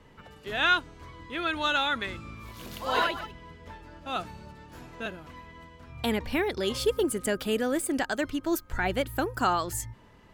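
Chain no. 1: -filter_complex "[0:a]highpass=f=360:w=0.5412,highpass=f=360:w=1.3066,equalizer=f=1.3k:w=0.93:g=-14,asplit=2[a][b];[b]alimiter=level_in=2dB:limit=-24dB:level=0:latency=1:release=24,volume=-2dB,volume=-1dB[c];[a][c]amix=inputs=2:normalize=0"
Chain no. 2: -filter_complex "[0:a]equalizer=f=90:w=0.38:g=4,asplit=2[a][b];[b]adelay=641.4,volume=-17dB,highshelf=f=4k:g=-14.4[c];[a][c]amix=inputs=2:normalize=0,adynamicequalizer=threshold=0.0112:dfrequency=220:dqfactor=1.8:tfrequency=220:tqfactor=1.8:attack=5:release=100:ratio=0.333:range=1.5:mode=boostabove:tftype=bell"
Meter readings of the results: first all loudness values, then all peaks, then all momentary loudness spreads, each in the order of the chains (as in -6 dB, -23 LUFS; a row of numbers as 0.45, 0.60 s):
-30.5, -27.5 LUFS; -14.5, -11.5 dBFS; 19, 18 LU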